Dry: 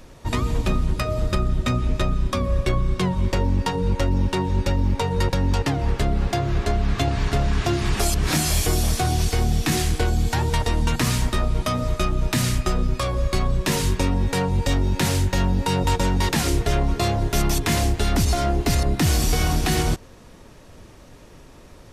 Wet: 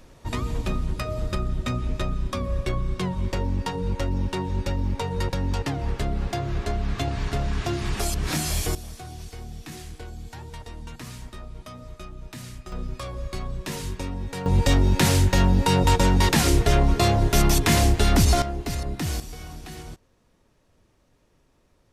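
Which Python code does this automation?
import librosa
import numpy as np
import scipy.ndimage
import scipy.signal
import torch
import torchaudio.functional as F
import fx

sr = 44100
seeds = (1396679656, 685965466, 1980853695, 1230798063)

y = fx.gain(x, sr, db=fx.steps((0.0, -5.0), (8.75, -17.5), (12.72, -10.0), (14.46, 2.0), (18.42, -8.5), (19.2, -18.0)))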